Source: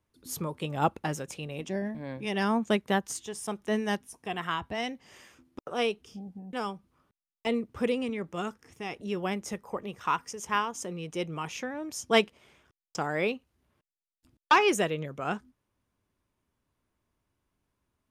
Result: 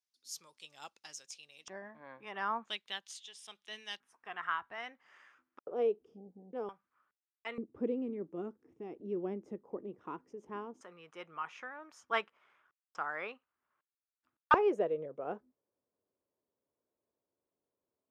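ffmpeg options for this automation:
ffmpeg -i in.wav -af "asetnsamples=nb_out_samples=441:pad=0,asendcmd='1.68 bandpass f 1200;2.69 bandpass f 3500;4 bandpass f 1400;5.61 bandpass f 430;6.69 bandpass f 1500;7.58 bandpass f 330;10.81 bandpass f 1300;14.54 bandpass f 500',bandpass=frequency=5300:width_type=q:width=2.5:csg=0" out.wav

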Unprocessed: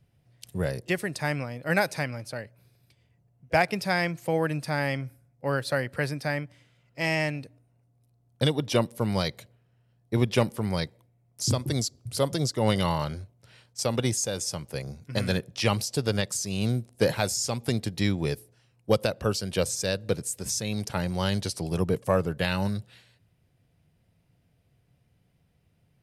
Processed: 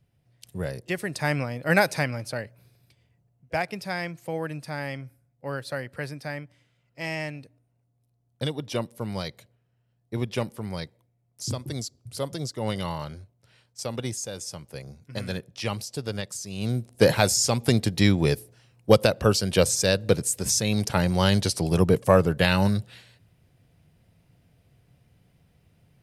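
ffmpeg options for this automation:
ffmpeg -i in.wav -af "volume=15dB,afade=type=in:start_time=0.89:duration=0.5:silence=0.473151,afade=type=out:start_time=2.42:duration=1.14:silence=0.354813,afade=type=in:start_time=16.55:duration=0.57:silence=0.281838" out.wav

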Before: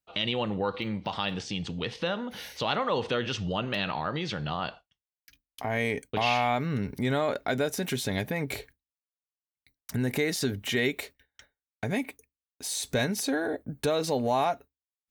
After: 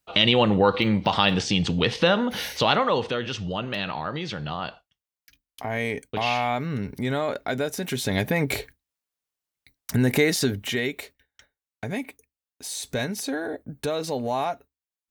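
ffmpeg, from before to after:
ffmpeg -i in.wav -af "volume=17dB,afade=type=out:start_time=2.42:duration=0.72:silence=0.334965,afade=type=in:start_time=7.88:duration=0.45:silence=0.473151,afade=type=out:start_time=10.22:duration=0.62:silence=0.398107" out.wav

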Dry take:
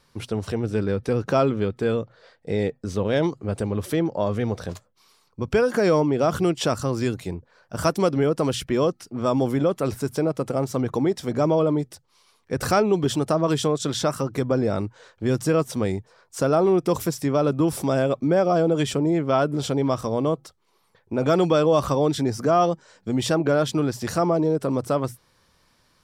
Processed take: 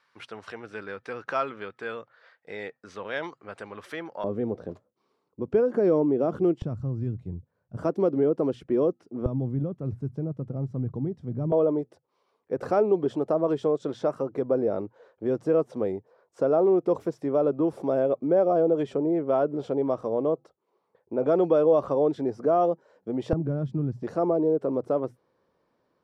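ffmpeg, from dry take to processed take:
ffmpeg -i in.wav -af "asetnsamples=nb_out_samples=441:pad=0,asendcmd='4.24 bandpass f 350;6.62 bandpass f 110;7.77 bandpass f 370;9.26 bandpass f 120;11.52 bandpass f 480;23.33 bandpass f 140;24.03 bandpass f 440',bandpass=frequency=1600:width_type=q:width=1.3:csg=0" out.wav

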